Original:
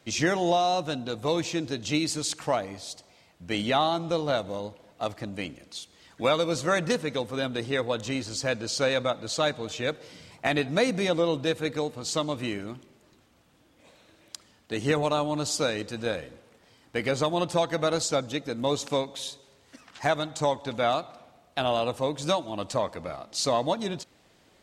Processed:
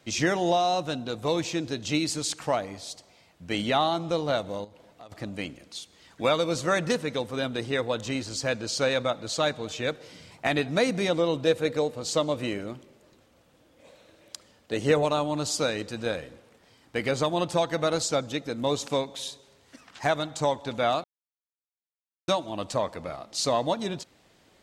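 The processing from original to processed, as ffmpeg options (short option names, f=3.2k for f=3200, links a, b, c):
-filter_complex "[0:a]asettb=1/sr,asplit=3[a][b][c];[a]atrim=end=4.644[d];[b]atrim=start=4.64:end=5.12,asetpts=PTS-STARTPTS,afade=t=in:d=0.004:c=qsin,afade=t=out:st=0.476:d=0.004:c=qsin,acompressor=threshold=-45dB:ratio=5:attack=3.2:release=140:knee=1:detection=peak[e];[c]atrim=start=5.116[f];[d][e]acrossfade=d=0.004:c1=hsin:c2=qsin[g];[g][f]acrossfade=d=0.004:c1=qsin:c2=hsin,asettb=1/sr,asplit=3[h][i][j];[h]atrim=end=11.444[k];[i]atrim=start=11.44:end=15.05,asetpts=PTS-STARTPTS,afade=t=in:d=0.004:c=qsin,afade=t=out:st=3.606:d=0.004:c=qsin,equalizer=f=530:w=3.1:g=7.5[l];[j]atrim=start=15.046[m];[k][l]acrossfade=d=0.004:c1=hsin:c2=qsin[n];[n][m]acrossfade=d=0.004:c1=qsin:c2=hsin,asplit=3[o][p][q];[o]atrim=end=21.04,asetpts=PTS-STARTPTS,afade=t=out:st=21.036:d=0.004:c=hsin[r];[p]atrim=start=21.04:end=22.28,asetpts=PTS-STARTPTS,volume=0[s];[q]atrim=start=22.28,asetpts=PTS-STARTPTS,afade=t=in:d=0.004:c=hsin[t];[r][s][t]concat=n=3:v=0:a=1"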